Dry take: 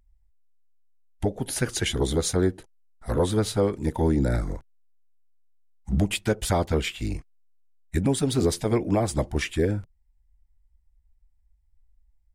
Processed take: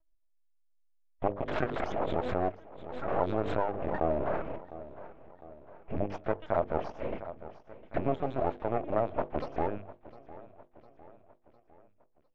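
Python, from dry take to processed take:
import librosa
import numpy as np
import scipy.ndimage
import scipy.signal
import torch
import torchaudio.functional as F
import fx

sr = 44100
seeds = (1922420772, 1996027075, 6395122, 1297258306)

y = fx.rattle_buzz(x, sr, strikes_db=-34.0, level_db=-33.0)
y = fx.lpc_vocoder(y, sr, seeds[0], excitation='pitch_kept', order=10)
y = np.abs(y)
y = fx.low_shelf(y, sr, hz=350.0, db=-11.5)
y = fx.echo_feedback(y, sr, ms=705, feedback_pct=51, wet_db=-18.5)
y = fx.rider(y, sr, range_db=3, speed_s=0.5)
y = scipy.signal.sosfilt(scipy.signal.butter(2, 1300.0, 'lowpass', fs=sr, output='sos'), y)
y = fx.peak_eq(y, sr, hz=630.0, db=8.0, octaves=0.37)
y = fx.hum_notches(y, sr, base_hz=50, count=10)
y = fx.pre_swell(y, sr, db_per_s=46.0, at=(1.47, 3.96), fade=0.02)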